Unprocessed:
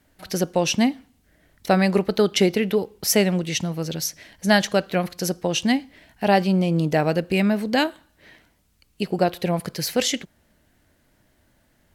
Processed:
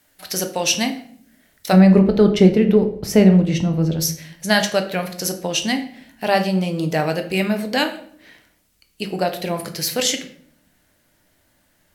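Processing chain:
spectral tilt +2.5 dB per octave, from 0:01.72 −3 dB per octave, from 0:04.00 +1.5 dB per octave
rectangular room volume 90 cubic metres, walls mixed, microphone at 0.41 metres

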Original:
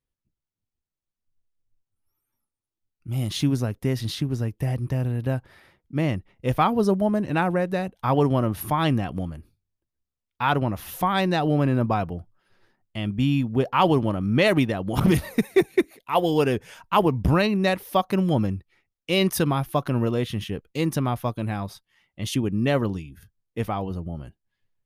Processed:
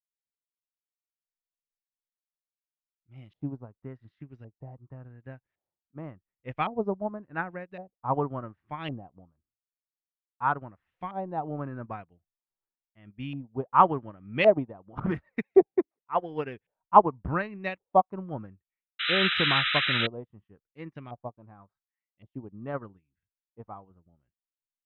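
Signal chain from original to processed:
auto-filter low-pass saw up 0.9 Hz 650–2,700 Hz
sound drawn into the spectrogram noise, 0:18.99–0:20.07, 1,200–4,000 Hz −17 dBFS
expander for the loud parts 2.5 to 1, over −35 dBFS

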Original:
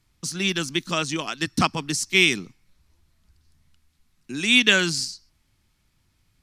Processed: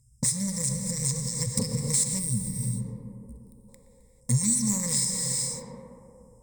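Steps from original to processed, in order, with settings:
linear-phase brick-wall band-stop 210–5,000 Hz
leveller curve on the samples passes 3
tape delay 118 ms, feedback 85%, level −12 dB, low-pass 1,700 Hz
reverb whose tail is shaped and stops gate 470 ms flat, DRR 7 dB
in parallel at 0 dB: brickwall limiter −21.5 dBFS, peak gain reduction 10.5 dB
on the sum: dynamic equaliser 870 Hz, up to −4 dB, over −40 dBFS, Q 0.8
downward compressor 5 to 1, threshold −31 dBFS, peak gain reduction 14.5 dB
EQ curve with evenly spaced ripples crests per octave 0.98, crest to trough 17 dB
gain on a spectral selection 0:02.19–0:03.69, 470–8,400 Hz −11 dB
level +5 dB

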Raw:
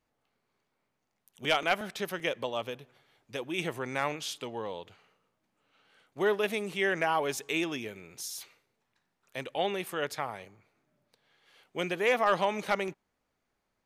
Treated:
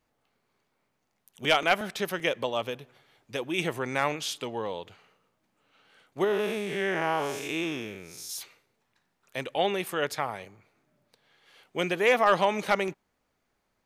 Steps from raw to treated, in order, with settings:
0:06.24–0:08.30: spectrum smeared in time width 201 ms
level +4 dB

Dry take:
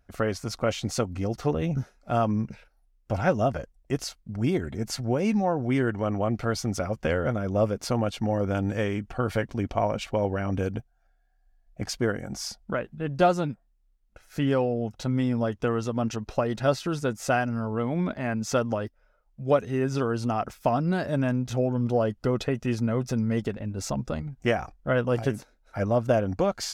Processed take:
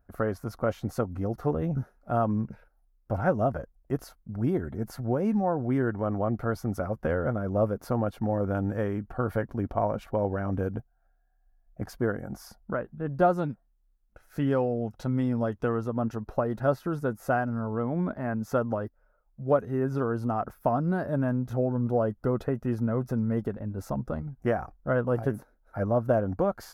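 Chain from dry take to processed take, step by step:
flat-topped bell 4,300 Hz −15 dB 2.3 octaves, from 0:13.37 −8.5 dB, from 0:15.76 −15.5 dB
level −1.5 dB

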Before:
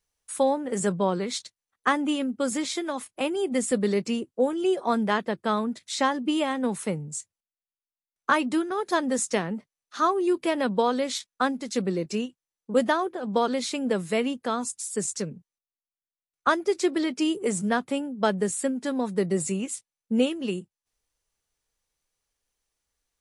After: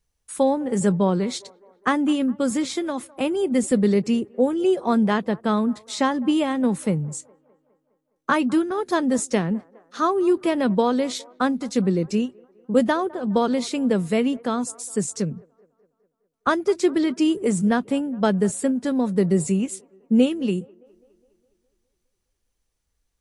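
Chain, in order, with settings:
low-shelf EQ 280 Hz +12 dB
on a send: delay with a band-pass on its return 206 ms, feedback 56%, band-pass 760 Hz, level −22 dB

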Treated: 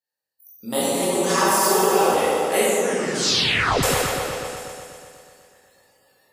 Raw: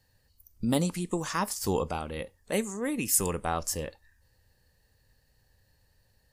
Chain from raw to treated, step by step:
high-shelf EQ 4,100 Hz +6.5 dB
convolution reverb RT60 1.8 s, pre-delay 14 ms, DRR −9 dB
speech leveller 0.5 s
high-pass filter 440 Hz 12 dB per octave
0:02.78: tape stop 1.05 s
parametric band 5,900 Hz −4 dB 2.5 octaves
echo whose low-pass opens from repeat to repeat 123 ms, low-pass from 750 Hz, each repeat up 1 octave, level −3 dB
noise reduction from a noise print of the clip's start 25 dB
0:01.02–0:02.14: comb filter 5.2 ms, depth 80%

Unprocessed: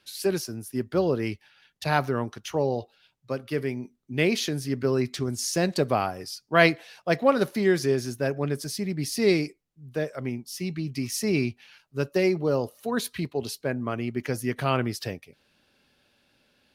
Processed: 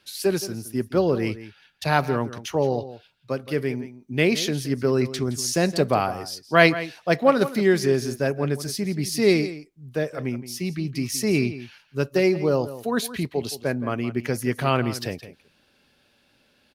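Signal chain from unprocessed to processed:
slap from a distant wall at 29 metres, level −14 dB
level +3 dB

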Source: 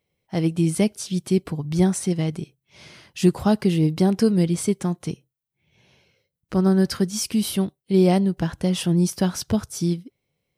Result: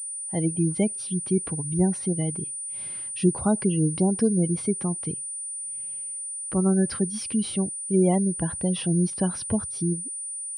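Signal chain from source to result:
gate on every frequency bin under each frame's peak −30 dB strong
switching amplifier with a slow clock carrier 9,300 Hz
level −3.5 dB

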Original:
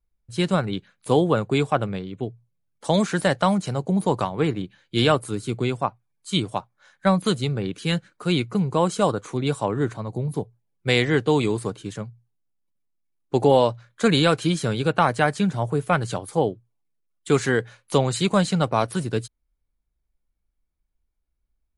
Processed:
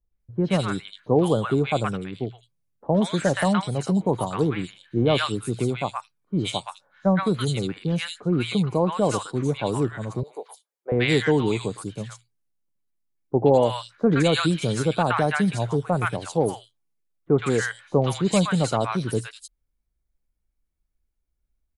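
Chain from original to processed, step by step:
0:10.23–0:10.92: high-pass filter 480 Hz 24 dB per octave
three-band delay without the direct sound lows, mids, highs 120/200 ms, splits 990/3,500 Hz

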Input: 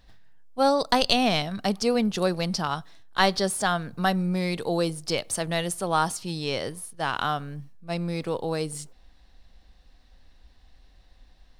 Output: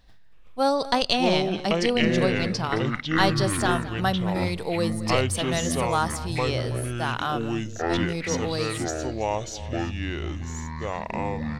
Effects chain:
0:00.77–0:02.63: low-pass filter 8,300 Hz 12 dB per octave
single-tap delay 217 ms −16.5 dB
delay with pitch and tempo change per echo 326 ms, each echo −7 semitones, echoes 2
level −1 dB

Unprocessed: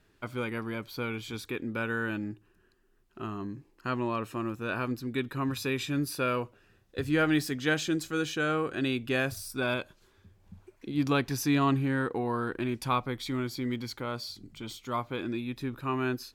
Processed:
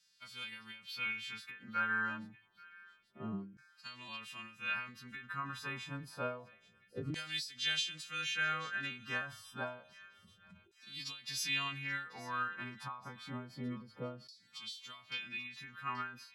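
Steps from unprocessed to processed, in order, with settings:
every partial snapped to a pitch grid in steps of 2 semitones
low shelf with overshoot 250 Hz +10 dB, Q 3
auto-filter band-pass saw down 0.28 Hz 380–5,300 Hz
on a send: delay with a high-pass on its return 832 ms, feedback 40%, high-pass 1,700 Hz, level −19 dB
on the sum: every ending faded ahead of time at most 110 dB per second
level +1.5 dB

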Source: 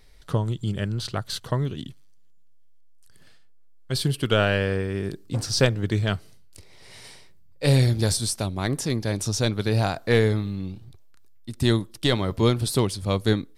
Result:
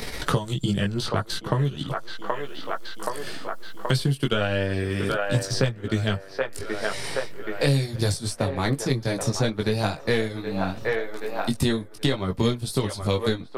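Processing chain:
multi-voice chorus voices 4, 0.19 Hz, delay 18 ms, depth 4.5 ms
transient designer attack +2 dB, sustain −6 dB
on a send: delay with a band-pass on its return 776 ms, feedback 36%, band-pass 920 Hz, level −7.5 dB
on the sum: multiband upward and downward compressor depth 100%
level +2 dB

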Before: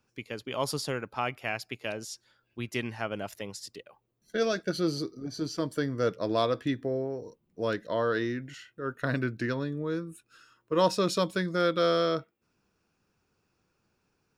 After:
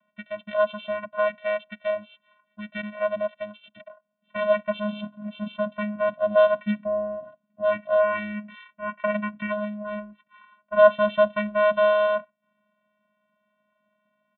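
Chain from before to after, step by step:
low shelf with overshoot 370 Hz −12.5 dB, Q 1.5
channel vocoder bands 8, square 209 Hz
downsampling to 8,000 Hz
level +7 dB

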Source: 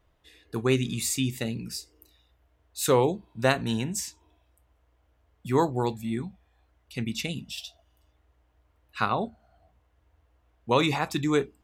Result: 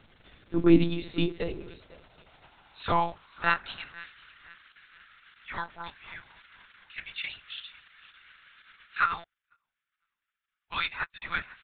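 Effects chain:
sub-octave generator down 2 octaves, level +2 dB
surface crackle 290 per second −35 dBFS
on a send: repeating echo 501 ms, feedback 41%, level −20 dB
on the sum: high-pass filter sweep 200 Hz → 1,600 Hz, 0:00.21–0:04.02
hollow resonant body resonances 280/1,400 Hz, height 6 dB, ringing for 25 ms
one-pitch LPC vocoder at 8 kHz 170 Hz
0:09.24–0:11.22: expander for the loud parts 2.5 to 1, over −45 dBFS
level −3 dB

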